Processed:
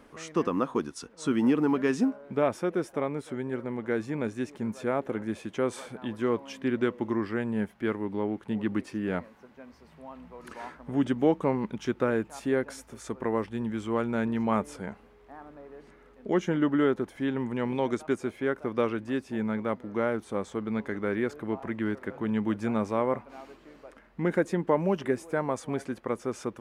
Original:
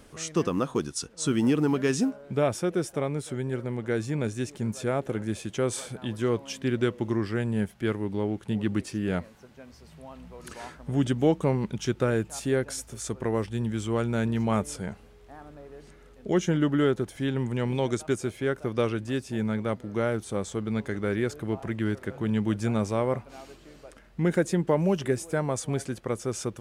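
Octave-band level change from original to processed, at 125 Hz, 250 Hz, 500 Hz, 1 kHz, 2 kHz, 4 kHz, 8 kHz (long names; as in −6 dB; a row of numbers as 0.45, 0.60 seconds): −8.0, −0.5, −1.0, +1.5, −0.5, −6.5, −11.0 decibels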